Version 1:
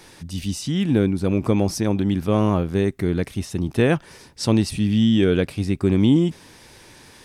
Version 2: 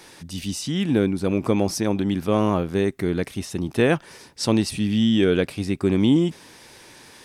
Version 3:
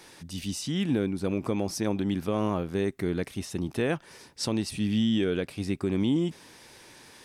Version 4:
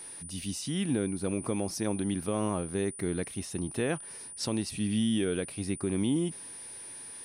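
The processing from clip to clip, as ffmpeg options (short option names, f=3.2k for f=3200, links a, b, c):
-af "lowshelf=f=130:g=-10.5,volume=1dB"
-af "alimiter=limit=-12.5dB:level=0:latency=1:release=270,volume=-4.5dB"
-af "aeval=exprs='val(0)+0.0112*sin(2*PI*9400*n/s)':c=same,volume=-3dB"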